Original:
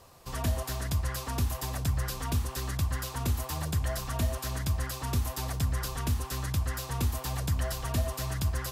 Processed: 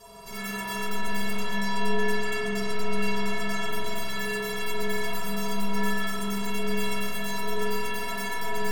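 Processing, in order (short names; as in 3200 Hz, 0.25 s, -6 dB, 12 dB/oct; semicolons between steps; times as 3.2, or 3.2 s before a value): 1.36–3.69 LPF 5900 Hz 12 dB/oct; sine folder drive 19 dB, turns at -19.5 dBFS; metallic resonator 200 Hz, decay 0.57 s, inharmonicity 0.03; spring tank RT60 3 s, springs 45 ms, chirp 25 ms, DRR -7 dB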